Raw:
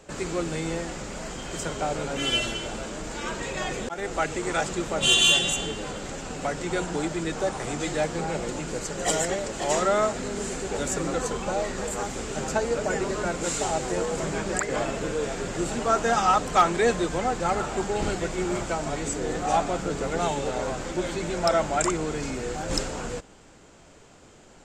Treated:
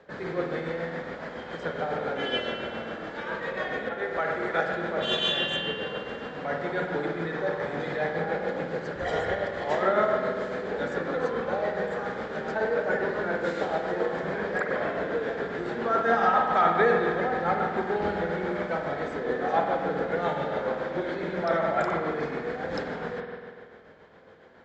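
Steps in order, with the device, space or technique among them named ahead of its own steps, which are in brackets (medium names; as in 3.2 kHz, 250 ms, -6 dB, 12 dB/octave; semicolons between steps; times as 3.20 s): 8.95–9.37 s: resonant low shelf 130 Hz +12.5 dB, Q 1.5; combo amplifier with spring reverb and tremolo (spring tank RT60 2 s, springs 48 ms, chirp 65 ms, DRR 0.5 dB; tremolo 7.2 Hz, depth 40%; cabinet simulation 97–3800 Hz, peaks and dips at 120 Hz -8 dB, 310 Hz -4 dB, 490 Hz +5 dB, 1.7 kHz +8 dB, 2.7 kHz -9 dB); trim -2.5 dB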